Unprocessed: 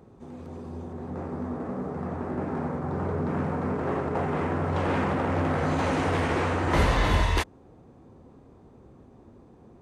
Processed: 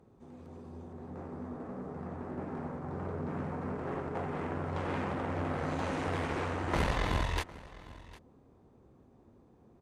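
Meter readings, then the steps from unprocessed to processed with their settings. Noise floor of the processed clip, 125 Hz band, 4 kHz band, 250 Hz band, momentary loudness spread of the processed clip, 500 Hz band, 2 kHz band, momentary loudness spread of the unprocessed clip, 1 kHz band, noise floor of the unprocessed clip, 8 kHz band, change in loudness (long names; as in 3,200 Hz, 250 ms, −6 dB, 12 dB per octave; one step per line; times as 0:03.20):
−62 dBFS, −8.5 dB, −7.5 dB, −8.5 dB, 18 LU, −8.5 dB, −8.0 dB, 14 LU, −8.5 dB, −53 dBFS, −8.0 dB, −8.5 dB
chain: harmonic generator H 2 −6 dB, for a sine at −11 dBFS
single-tap delay 754 ms −19.5 dB
level −9 dB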